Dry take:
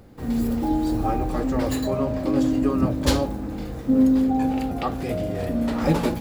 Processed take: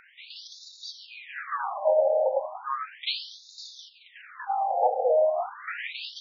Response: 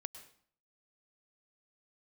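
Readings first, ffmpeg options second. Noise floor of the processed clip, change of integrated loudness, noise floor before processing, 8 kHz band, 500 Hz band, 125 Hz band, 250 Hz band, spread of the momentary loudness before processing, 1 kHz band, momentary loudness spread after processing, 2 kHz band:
-55 dBFS, -3.5 dB, -33 dBFS, under -10 dB, +1.5 dB, under -40 dB, under -40 dB, 8 LU, +1.0 dB, 20 LU, 0.0 dB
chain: -filter_complex "[0:a]highpass=120,lowpass=6800,acontrast=77,asplit=2[s0][s1];[1:a]atrim=start_sample=2205,lowshelf=f=180:g=10.5[s2];[s1][s2]afir=irnorm=-1:irlink=0,volume=1.5[s3];[s0][s3]amix=inputs=2:normalize=0,alimiter=limit=0.398:level=0:latency=1:release=151,afftfilt=real='re*between(b*sr/1024,620*pow(5100/620,0.5+0.5*sin(2*PI*0.35*pts/sr))/1.41,620*pow(5100/620,0.5+0.5*sin(2*PI*0.35*pts/sr))*1.41)':imag='im*between(b*sr/1024,620*pow(5100/620,0.5+0.5*sin(2*PI*0.35*pts/sr))/1.41,620*pow(5100/620,0.5+0.5*sin(2*PI*0.35*pts/sr))*1.41)':win_size=1024:overlap=0.75"

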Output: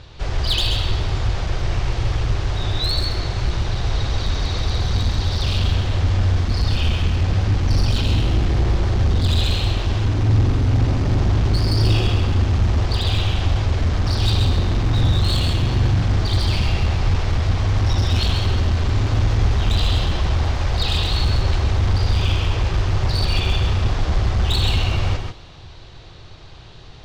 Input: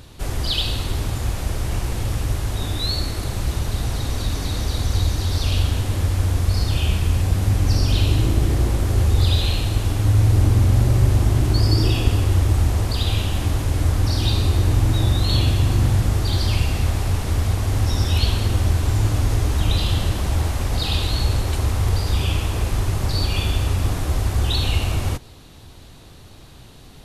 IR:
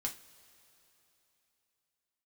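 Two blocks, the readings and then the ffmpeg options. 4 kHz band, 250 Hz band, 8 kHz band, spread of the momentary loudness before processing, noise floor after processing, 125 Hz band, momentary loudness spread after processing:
+2.0 dB, +0.5 dB, -5.5 dB, 7 LU, -39 dBFS, +0.5 dB, 5 LU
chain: -filter_complex "[0:a]lowpass=f=5400:w=0.5412,lowpass=f=5400:w=1.3066,equalizer=f=240:t=o:w=0.78:g=-10,asoftclip=type=hard:threshold=0.141,asplit=2[s0][s1];[1:a]atrim=start_sample=2205,asetrate=66150,aresample=44100,adelay=131[s2];[s1][s2]afir=irnorm=-1:irlink=0,volume=0.841[s3];[s0][s3]amix=inputs=2:normalize=0,volume=1.33"

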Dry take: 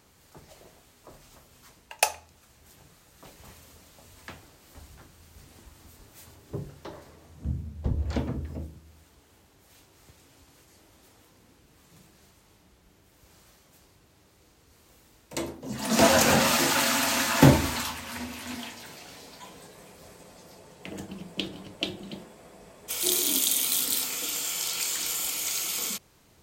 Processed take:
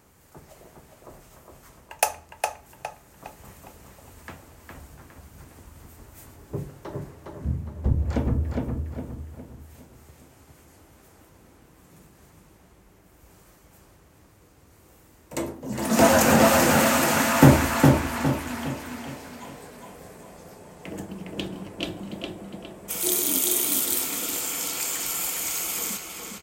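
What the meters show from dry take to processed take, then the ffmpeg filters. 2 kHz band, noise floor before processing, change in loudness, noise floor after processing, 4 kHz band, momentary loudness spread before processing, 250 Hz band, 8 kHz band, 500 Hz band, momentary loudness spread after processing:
+2.5 dB, -61 dBFS, +2.5 dB, -56 dBFS, -2.5 dB, 22 LU, +5.0 dB, +1.5 dB, +5.0 dB, 22 LU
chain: -filter_complex "[0:a]equalizer=f=4000:t=o:w=1.3:g=-8.5,asplit=2[s0][s1];[s1]asoftclip=type=tanh:threshold=0.224,volume=0.335[s2];[s0][s2]amix=inputs=2:normalize=0,asplit=2[s3][s4];[s4]adelay=410,lowpass=f=4300:p=1,volume=0.708,asplit=2[s5][s6];[s6]adelay=410,lowpass=f=4300:p=1,volume=0.41,asplit=2[s7][s8];[s8]adelay=410,lowpass=f=4300:p=1,volume=0.41,asplit=2[s9][s10];[s10]adelay=410,lowpass=f=4300:p=1,volume=0.41,asplit=2[s11][s12];[s12]adelay=410,lowpass=f=4300:p=1,volume=0.41[s13];[s3][s5][s7][s9][s11][s13]amix=inputs=6:normalize=0,volume=1.12"

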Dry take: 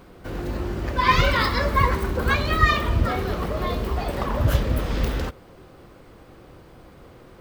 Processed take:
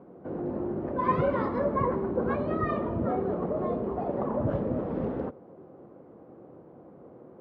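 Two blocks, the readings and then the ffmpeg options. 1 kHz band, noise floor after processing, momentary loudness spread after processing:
-7.5 dB, -52 dBFS, 7 LU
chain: -af "asuperpass=centerf=360:order=4:qfactor=0.58"

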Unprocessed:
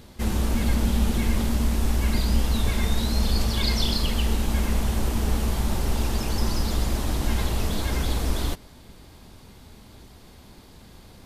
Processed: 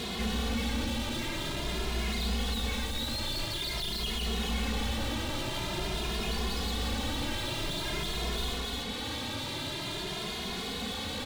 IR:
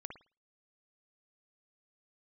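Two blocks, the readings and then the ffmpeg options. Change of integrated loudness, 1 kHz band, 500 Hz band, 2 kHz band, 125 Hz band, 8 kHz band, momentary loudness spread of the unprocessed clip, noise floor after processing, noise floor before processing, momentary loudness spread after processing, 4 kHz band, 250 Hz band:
-7.0 dB, -3.5 dB, -4.0 dB, -1.0 dB, -10.5 dB, -5.0 dB, 3 LU, -36 dBFS, -49 dBFS, 3 LU, +0.5 dB, -7.5 dB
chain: -filter_complex "[0:a]lowpass=10000,highshelf=f=4900:t=q:w=3:g=-9,asplit=2[s0][s1];[s1]aecho=0:1:37.9|285.7:0.282|0.251[s2];[s0][s2]amix=inputs=2:normalize=0,acompressor=mode=upward:threshold=0.0251:ratio=2.5,alimiter=limit=0.1:level=0:latency=1,asplit=2[s3][s4];[s4]highpass=f=720:p=1,volume=70.8,asoftclip=type=tanh:threshold=0.1[s5];[s3][s5]amix=inputs=2:normalize=0,lowpass=f=3100:p=1,volume=0.501,equalizer=f=1200:w=0.39:g=-7.5,asplit=2[s6][s7];[s7]adelay=2.4,afreqshift=0.48[s8];[s6][s8]amix=inputs=2:normalize=1"

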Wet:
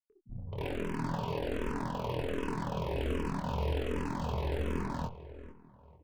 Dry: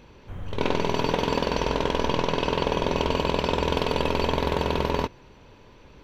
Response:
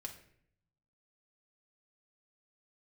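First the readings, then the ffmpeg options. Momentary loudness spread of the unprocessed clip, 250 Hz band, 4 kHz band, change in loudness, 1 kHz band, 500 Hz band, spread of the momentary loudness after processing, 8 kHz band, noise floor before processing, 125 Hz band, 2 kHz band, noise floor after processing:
5 LU, -8.0 dB, -17.0 dB, -10.0 dB, -12.0 dB, -11.5 dB, 11 LU, -13.5 dB, -51 dBFS, -5.0 dB, -12.0 dB, -60 dBFS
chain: -filter_complex "[0:a]bandreject=f=50:t=h:w=6,bandreject=f=100:t=h:w=6,bandreject=f=150:t=h:w=6,acrossover=split=3500[s0][s1];[s1]acompressor=threshold=0.00447:ratio=4:attack=1:release=60[s2];[s0][s2]amix=inputs=2:normalize=0,highpass=f=110:p=1,afftfilt=real='re*gte(hypot(re,im),0.02)':imag='im*gte(hypot(re,im),0.02)':win_size=1024:overlap=0.75,aemphasis=mode=reproduction:type=bsi,acompressor=mode=upward:threshold=0.00631:ratio=2.5,asoftclip=type=hard:threshold=0.15,aeval=exprs='0.15*(cos(1*acos(clip(val(0)/0.15,-1,1)))-cos(1*PI/2))+0.00119*(cos(6*acos(clip(val(0)/0.15,-1,1)))-cos(6*PI/2))+0.00237*(cos(7*acos(clip(val(0)/0.15,-1,1)))-cos(7*PI/2))+0.0133*(cos(8*acos(clip(val(0)/0.15,-1,1)))-cos(8*PI/2))':c=same,asplit=2[s3][s4];[s4]adelay=25,volume=0.501[s5];[s3][s5]amix=inputs=2:normalize=0,asplit=2[s6][s7];[s7]adelay=445,lowpass=f=2200:p=1,volume=0.178,asplit=2[s8][s9];[s9]adelay=445,lowpass=f=2200:p=1,volume=0.4,asplit=2[s10][s11];[s11]adelay=445,lowpass=f=2200:p=1,volume=0.4,asplit=2[s12][s13];[s13]adelay=445,lowpass=f=2200:p=1,volume=0.4[s14];[s8][s10][s12][s14]amix=inputs=4:normalize=0[s15];[s6][s15]amix=inputs=2:normalize=0,asplit=2[s16][s17];[s17]afreqshift=-1.3[s18];[s16][s18]amix=inputs=2:normalize=1,volume=0.376"

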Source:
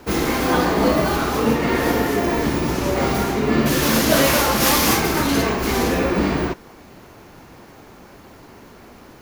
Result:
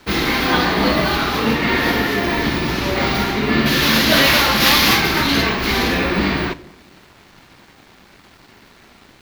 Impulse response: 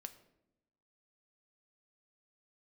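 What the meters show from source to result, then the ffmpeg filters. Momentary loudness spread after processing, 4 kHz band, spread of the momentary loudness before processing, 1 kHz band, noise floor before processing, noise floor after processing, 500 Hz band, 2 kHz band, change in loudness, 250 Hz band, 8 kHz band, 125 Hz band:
7 LU, +8.0 dB, 6 LU, +1.5 dB, -45 dBFS, -48 dBFS, -1.5 dB, +6.5 dB, +3.0 dB, +0.5 dB, -2.5 dB, +1.0 dB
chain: -filter_complex "[0:a]equalizer=f=500:t=o:w=1:g=-4,equalizer=f=2000:t=o:w=1:g=5,equalizer=f=4000:t=o:w=1:g=10,equalizer=f=8000:t=o:w=1:g=-10,aeval=exprs='sgn(val(0))*max(abs(val(0))-0.00501,0)':c=same,asplit=2[s0][s1];[1:a]atrim=start_sample=2205[s2];[s1][s2]afir=irnorm=-1:irlink=0,volume=2.11[s3];[s0][s3]amix=inputs=2:normalize=0,volume=0.562"

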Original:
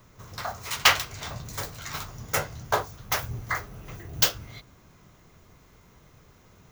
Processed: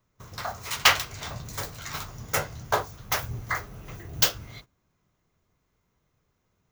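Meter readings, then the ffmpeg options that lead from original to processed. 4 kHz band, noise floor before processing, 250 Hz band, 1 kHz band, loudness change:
0.0 dB, -57 dBFS, 0.0 dB, 0.0 dB, 0.0 dB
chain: -af "agate=range=0.126:threshold=0.00501:ratio=16:detection=peak"

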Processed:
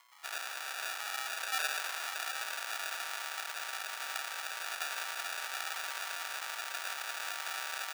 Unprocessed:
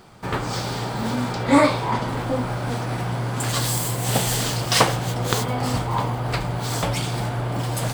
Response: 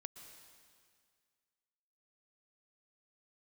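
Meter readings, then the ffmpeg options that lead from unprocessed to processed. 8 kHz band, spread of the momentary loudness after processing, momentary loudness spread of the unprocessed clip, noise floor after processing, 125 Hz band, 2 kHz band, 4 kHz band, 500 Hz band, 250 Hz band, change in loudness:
-12.0 dB, 4 LU, 8 LU, -43 dBFS, under -40 dB, -6.5 dB, -10.5 dB, -25.5 dB, under -40 dB, -13.5 dB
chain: -filter_complex "[0:a]acompressor=mode=upward:threshold=0.01:ratio=2.5,aeval=exprs='val(0)+0.00631*(sin(2*PI*60*n/s)+sin(2*PI*2*60*n/s)/2+sin(2*PI*3*60*n/s)/3+sin(2*PI*4*60*n/s)/4+sin(2*PI*5*60*n/s)/5)':c=same,asoftclip=type=tanh:threshold=0.112,lowpass=f=2000:p=1,alimiter=limit=0.0794:level=0:latency=1,aecho=1:1:2.9:0.77,afwtdn=0.0251,asplit=9[s0][s1][s2][s3][s4][s5][s6][s7][s8];[s1]adelay=115,afreqshift=150,volume=0.501[s9];[s2]adelay=230,afreqshift=300,volume=0.295[s10];[s3]adelay=345,afreqshift=450,volume=0.174[s11];[s4]adelay=460,afreqshift=600,volume=0.104[s12];[s5]adelay=575,afreqshift=750,volume=0.061[s13];[s6]adelay=690,afreqshift=900,volume=0.0359[s14];[s7]adelay=805,afreqshift=1050,volume=0.0211[s15];[s8]adelay=920,afreqshift=1200,volume=0.0124[s16];[s0][s9][s10][s11][s12][s13][s14][s15][s16]amix=inputs=9:normalize=0,acrusher=samples=42:mix=1:aa=0.000001,highpass=f=1000:w=0.5412,highpass=f=1000:w=1.3066,volume=0.794"

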